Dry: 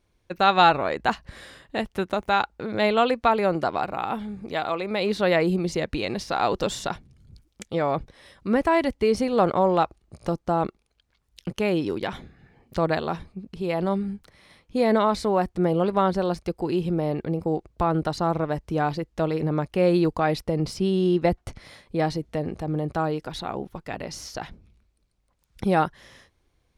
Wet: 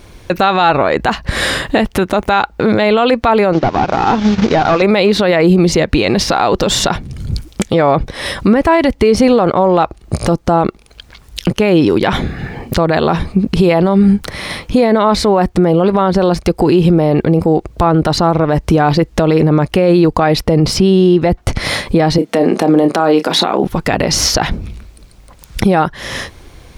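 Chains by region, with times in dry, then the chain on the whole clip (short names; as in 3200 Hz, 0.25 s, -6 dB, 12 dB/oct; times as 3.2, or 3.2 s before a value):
3.53–4.82 delta modulation 32 kbps, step -40 dBFS + notches 50/100/150/200/250/300/350 Hz + transient shaper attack +4 dB, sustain -10 dB
22.18–23.64 HPF 210 Hz 24 dB/oct + doubler 30 ms -11 dB
whole clip: dynamic EQ 9300 Hz, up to -5 dB, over -49 dBFS, Q 0.75; compressor 2.5:1, threshold -39 dBFS; maximiser +31.5 dB; gain -1 dB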